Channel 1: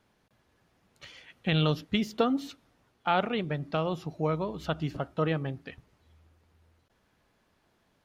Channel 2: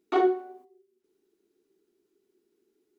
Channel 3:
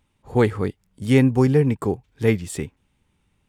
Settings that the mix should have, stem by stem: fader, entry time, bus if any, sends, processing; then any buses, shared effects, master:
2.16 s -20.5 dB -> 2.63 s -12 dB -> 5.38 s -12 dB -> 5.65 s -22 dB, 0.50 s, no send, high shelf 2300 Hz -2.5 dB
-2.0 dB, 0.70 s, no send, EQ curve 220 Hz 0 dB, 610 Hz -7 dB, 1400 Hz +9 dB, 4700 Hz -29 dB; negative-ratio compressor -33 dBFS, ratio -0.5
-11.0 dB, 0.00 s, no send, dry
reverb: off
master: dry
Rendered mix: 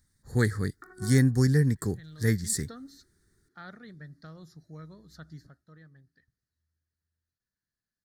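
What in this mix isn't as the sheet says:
stem 3 -11.0 dB -> -2.5 dB; master: extra EQ curve 150 Hz 0 dB, 910 Hz -16 dB, 1800 Hz +6 dB, 2700 Hz -27 dB, 4200 Hz +8 dB

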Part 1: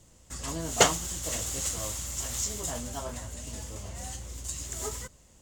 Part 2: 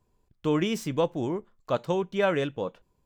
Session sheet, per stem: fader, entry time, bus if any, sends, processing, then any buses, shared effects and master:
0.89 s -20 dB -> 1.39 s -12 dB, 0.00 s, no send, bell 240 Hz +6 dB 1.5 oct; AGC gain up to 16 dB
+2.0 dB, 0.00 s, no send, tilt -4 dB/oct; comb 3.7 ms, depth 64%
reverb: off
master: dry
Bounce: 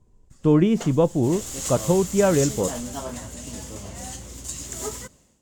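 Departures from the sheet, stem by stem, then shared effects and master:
stem 2: missing comb 3.7 ms, depth 64%; master: extra low shelf 71 Hz -9 dB

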